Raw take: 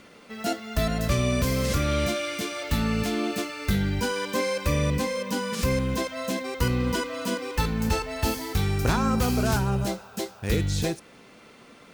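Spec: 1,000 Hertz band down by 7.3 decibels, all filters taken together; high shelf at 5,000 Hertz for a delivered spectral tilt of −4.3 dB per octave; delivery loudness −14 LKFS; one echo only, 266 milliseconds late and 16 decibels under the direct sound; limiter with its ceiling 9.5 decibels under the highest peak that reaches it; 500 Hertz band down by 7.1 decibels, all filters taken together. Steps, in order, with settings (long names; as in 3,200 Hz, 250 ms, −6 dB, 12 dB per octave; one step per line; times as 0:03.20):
parametric band 500 Hz −6.5 dB
parametric band 1,000 Hz −8 dB
high-shelf EQ 5,000 Hz +4.5 dB
brickwall limiter −21.5 dBFS
single-tap delay 266 ms −16 dB
level +17 dB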